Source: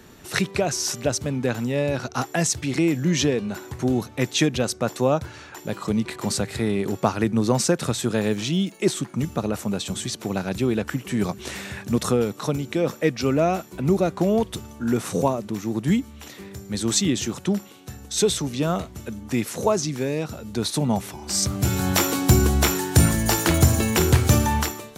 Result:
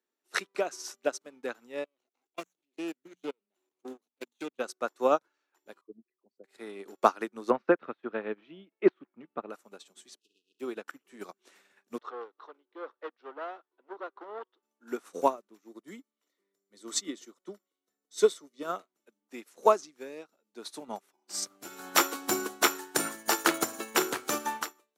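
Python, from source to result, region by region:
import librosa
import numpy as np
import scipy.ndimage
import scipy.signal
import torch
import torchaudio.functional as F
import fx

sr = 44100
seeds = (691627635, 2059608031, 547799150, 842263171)

y = fx.chain(x, sr, fx.lower_of_two(delay_ms=0.3),
    fx.level_steps(step_db=21),
    fx.hum_notches(base_hz=60, count=4), at=(1.84, 4.59))
y = fx.chain(y, sr, fx.envelope_sharpen(power=3.0),
    fx.lowpass(hz=2700.0, slope=12),
    fx.upward_expand(threshold_db=-30.0, expansion=2.5), at=(5.81, 6.44))
y = fx.chain(y, sr, fx.lowpass(hz=2700.0, slope=24),
    fx.low_shelf(hz=180.0, db=7.0), at=(7.5, 9.5))
y = fx.spec_flatten(y, sr, power=0.11, at=(10.18, 10.59), fade=0.02)
y = fx.env_lowpass_down(y, sr, base_hz=2300.0, full_db=-24.5, at=(10.18, 10.59), fade=0.02)
y = fx.brickwall_bandstop(y, sr, low_hz=470.0, high_hz=2500.0, at=(10.18, 10.59), fade=0.02)
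y = fx.chain(y, sr, fx.overload_stage(gain_db=21.0),
    fx.cabinet(low_hz=330.0, low_slope=24, high_hz=3400.0, hz=(620.0, 1000.0, 2400.0), db=(-4, 3, -9)), at=(11.98, 14.63))
y = fx.chain(y, sr, fx.notch(hz=2700.0, q=8.3),
    fx.notch_comb(f0_hz=810.0), at=(15.68, 18.65))
y = scipy.signal.sosfilt(scipy.signal.butter(4, 290.0, 'highpass', fs=sr, output='sos'), y)
y = fx.dynamic_eq(y, sr, hz=1300.0, q=2.1, threshold_db=-44.0, ratio=4.0, max_db=7)
y = fx.upward_expand(y, sr, threshold_db=-41.0, expansion=2.5)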